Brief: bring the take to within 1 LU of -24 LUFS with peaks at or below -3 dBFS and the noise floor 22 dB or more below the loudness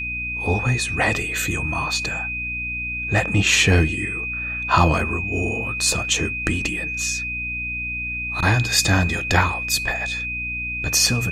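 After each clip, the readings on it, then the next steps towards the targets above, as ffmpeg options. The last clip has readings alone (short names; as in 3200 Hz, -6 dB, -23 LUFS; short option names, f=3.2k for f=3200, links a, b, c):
hum 60 Hz; harmonics up to 300 Hz; hum level -33 dBFS; steady tone 2500 Hz; tone level -25 dBFS; loudness -20.5 LUFS; peak -2.0 dBFS; loudness target -24.0 LUFS
-> -af "bandreject=f=60:t=h:w=6,bandreject=f=120:t=h:w=6,bandreject=f=180:t=h:w=6,bandreject=f=240:t=h:w=6,bandreject=f=300:t=h:w=6"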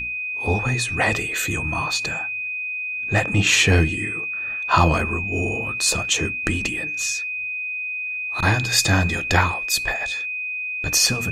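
hum none; steady tone 2500 Hz; tone level -25 dBFS
-> -af "bandreject=f=2.5k:w=30"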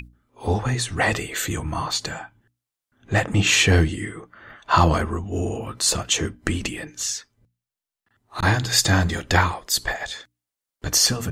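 steady tone none; loudness -22.0 LUFS; peak -2.0 dBFS; loudness target -24.0 LUFS
-> -af "volume=-2dB"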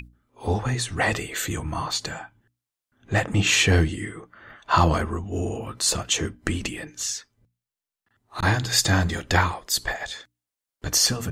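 loudness -24.0 LUFS; peak -4.0 dBFS; noise floor -89 dBFS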